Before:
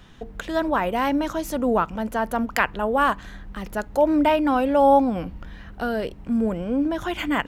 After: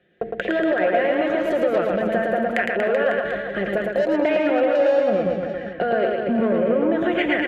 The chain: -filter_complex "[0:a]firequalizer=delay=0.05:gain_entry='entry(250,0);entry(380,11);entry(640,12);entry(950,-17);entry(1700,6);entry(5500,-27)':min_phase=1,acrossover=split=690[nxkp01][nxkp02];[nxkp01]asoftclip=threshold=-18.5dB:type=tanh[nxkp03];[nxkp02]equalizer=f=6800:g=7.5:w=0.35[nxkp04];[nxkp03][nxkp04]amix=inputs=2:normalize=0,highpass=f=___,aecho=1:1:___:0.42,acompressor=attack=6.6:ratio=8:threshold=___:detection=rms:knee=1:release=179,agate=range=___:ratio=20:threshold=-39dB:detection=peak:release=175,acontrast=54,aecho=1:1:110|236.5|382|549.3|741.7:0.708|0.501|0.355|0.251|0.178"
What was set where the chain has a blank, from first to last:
120, 5.6, -25dB, -22dB